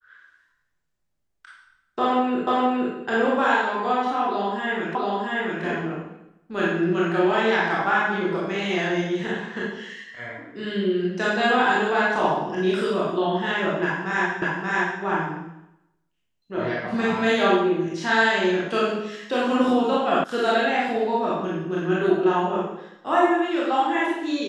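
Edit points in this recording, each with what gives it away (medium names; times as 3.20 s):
2.47 s: repeat of the last 0.47 s
4.95 s: repeat of the last 0.68 s
14.42 s: repeat of the last 0.58 s
20.24 s: sound stops dead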